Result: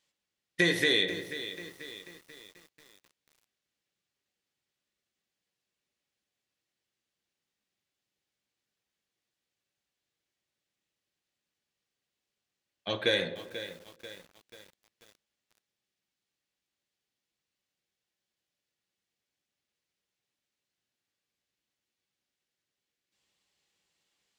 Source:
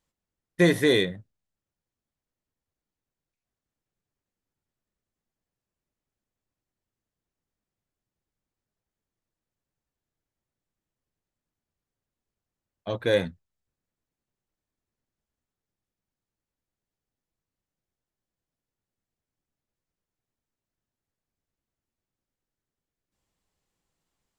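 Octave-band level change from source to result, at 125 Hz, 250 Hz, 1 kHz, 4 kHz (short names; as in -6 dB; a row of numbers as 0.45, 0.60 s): -10.5, -8.5, -4.0, +3.0 dB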